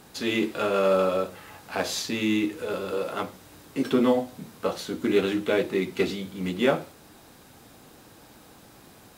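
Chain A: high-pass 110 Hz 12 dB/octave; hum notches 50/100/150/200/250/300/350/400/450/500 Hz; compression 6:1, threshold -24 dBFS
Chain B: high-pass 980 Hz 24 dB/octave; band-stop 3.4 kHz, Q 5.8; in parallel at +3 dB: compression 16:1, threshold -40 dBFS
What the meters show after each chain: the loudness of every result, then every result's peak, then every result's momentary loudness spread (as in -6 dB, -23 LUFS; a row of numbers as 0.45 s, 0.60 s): -30.5 LUFS, -31.5 LUFS; -13.0 dBFS, -14.0 dBFS; 9 LU, 18 LU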